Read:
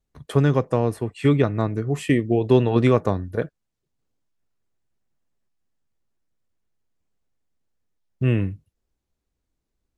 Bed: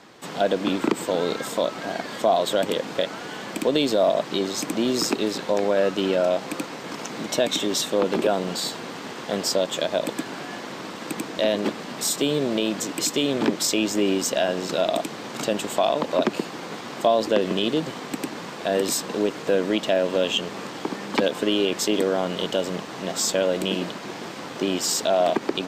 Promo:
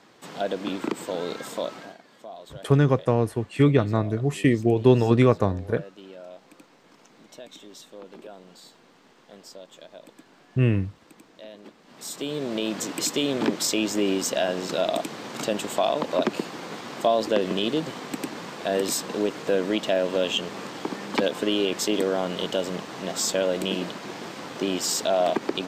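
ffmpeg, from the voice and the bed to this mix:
ffmpeg -i stem1.wav -i stem2.wav -filter_complex "[0:a]adelay=2350,volume=-0.5dB[link_01];[1:a]volume=13.5dB,afade=type=out:start_time=1.73:duration=0.24:silence=0.16788,afade=type=in:start_time=11.83:duration=1:silence=0.105925[link_02];[link_01][link_02]amix=inputs=2:normalize=0" out.wav

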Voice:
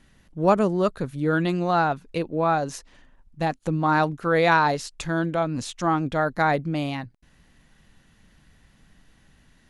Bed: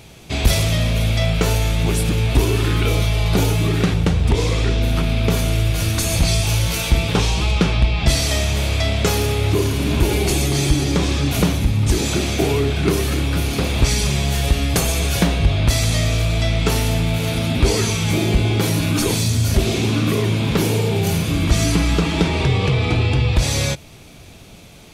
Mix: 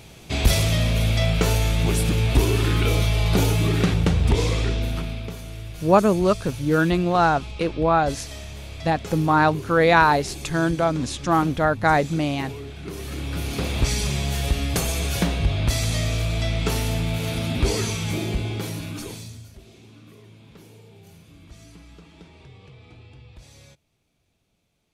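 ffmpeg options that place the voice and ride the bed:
ffmpeg -i stem1.wav -i stem2.wav -filter_complex "[0:a]adelay=5450,volume=3dB[link_01];[1:a]volume=9.5dB,afade=type=out:start_time=4.39:duration=0.95:silence=0.177828,afade=type=in:start_time=12.88:duration=0.78:silence=0.251189,afade=type=out:start_time=17.73:duration=1.79:silence=0.0630957[link_02];[link_01][link_02]amix=inputs=2:normalize=0" out.wav

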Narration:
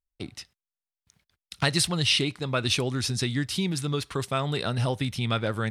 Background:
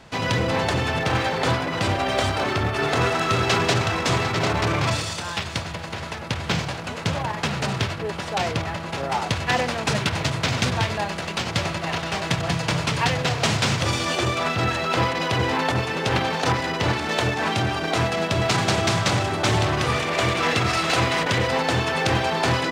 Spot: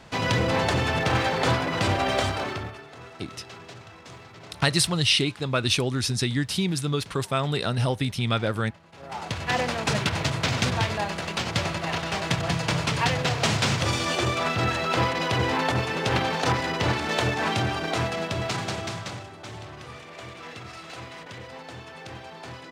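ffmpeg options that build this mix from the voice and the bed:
ffmpeg -i stem1.wav -i stem2.wav -filter_complex "[0:a]adelay=3000,volume=2dB[link_01];[1:a]volume=20dB,afade=type=out:start_time=2.09:duration=0.74:silence=0.0794328,afade=type=in:start_time=8.92:duration=0.75:silence=0.0891251,afade=type=out:start_time=17.52:duration=1.8:silence=0.141254[link_02];[link_01][link_02]amix=inputs=2:normalize=0" out.wav

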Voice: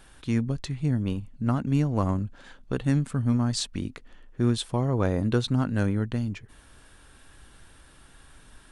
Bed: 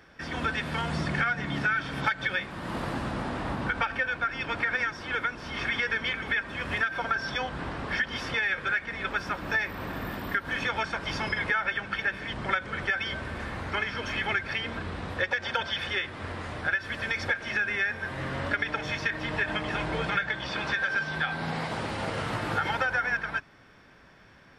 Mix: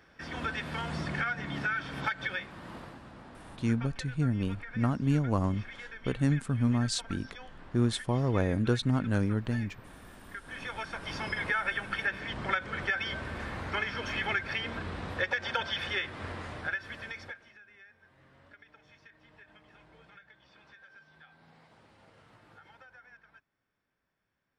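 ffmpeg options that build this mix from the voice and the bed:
ffmpeg -i stem1.wav -i stem2.wav -filter_complex "[0:a]adelay=3350,volume=-3dB[link_01];[1:a]volume=10dB,afade=type=out:start_time=2.26:duration=0.72:silence=0.237137,afade=type=in:start_time=10.26:duration=1.4:silence=0.177828,afade=type=out:start_time=16.23:duration=1.3:silence=0.0530884[link_02];[link_01][link_02]amix=inputs=2:normalize=0" out.wav

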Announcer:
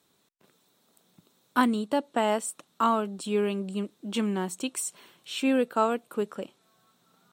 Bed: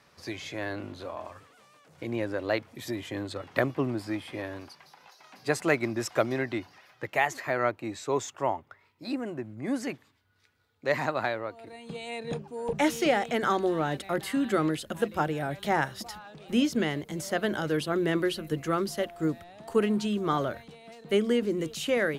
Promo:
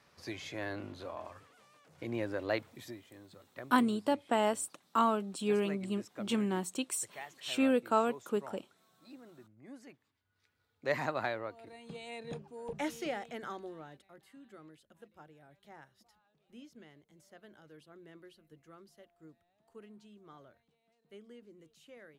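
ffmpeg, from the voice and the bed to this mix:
ffmpeg -i stem1.wav -i stem2.wav -filter_complex "[0:a]adelay=2150,volume=-4dB[link_01];[1:a]volume=10dB,afade=type=out:start_time=2.66:duration=0.37:silence=0.16788,afade=type=in:start_time=9.96:duration=0.78:silence=0.177828,afade=type=out:start_time=11.45:duration=2.66:silence=0.0749894[link_02];[link_01][link_02]amix=inputs=2:normalize=0" out.wav

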